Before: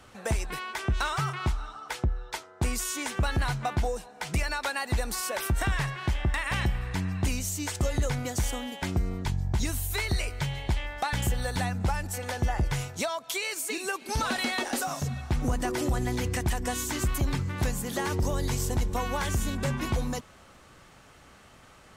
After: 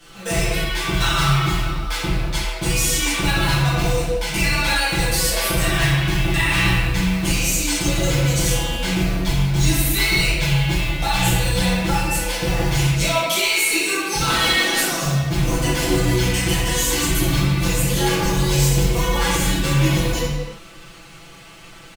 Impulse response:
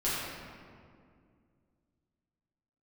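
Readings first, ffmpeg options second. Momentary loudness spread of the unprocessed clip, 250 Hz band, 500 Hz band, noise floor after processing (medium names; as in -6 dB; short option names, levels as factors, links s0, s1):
4 LU, +11.0 dB, +10.0 dB, -41 dBFS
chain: -filter_complex "[0:a]highshelf=f=2000:t=q:w=1.5:g=6,aecho=1:1:6:0.84,acrusher=bits=3:mode=log:mix=0:aa=0.000001[s0];[1:a]atrim=start_sample=2205,afade=t=out:st=0.42:d=0.01,atrim=end_sample=18963,asetrate=42336,aresample=44100[s1];[s0][s1]afir=irnorm=-1:irlink=0,volume=0.794"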